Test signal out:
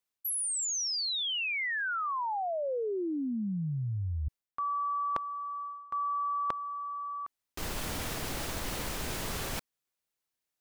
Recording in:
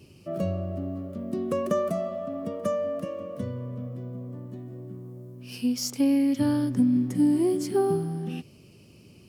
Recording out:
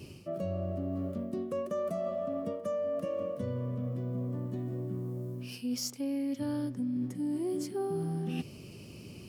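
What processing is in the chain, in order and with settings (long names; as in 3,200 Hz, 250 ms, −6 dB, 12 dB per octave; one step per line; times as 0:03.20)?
dynamic equaliser 540 Hz, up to +4 dB, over −41 dBFS, Q 2.9
reversed playback
downward compressor 12 to 1, threshold −36 dBFS
reversed playback
level +5 dB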